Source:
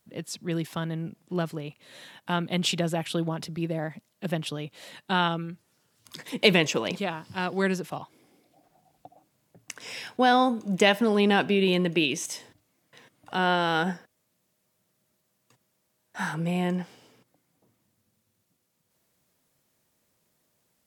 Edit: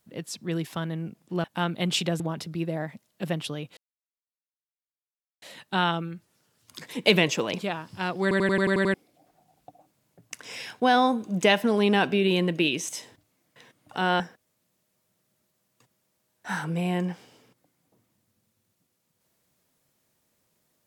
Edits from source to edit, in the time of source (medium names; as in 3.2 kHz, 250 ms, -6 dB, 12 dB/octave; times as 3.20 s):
1.44–2.16 s: delete
2.92–3.22 s: delete
4.79 s: insert silence 1.65 s
7.59 s: stutter in place 0.09 s, 8 plays
13.57–13.90 s: delete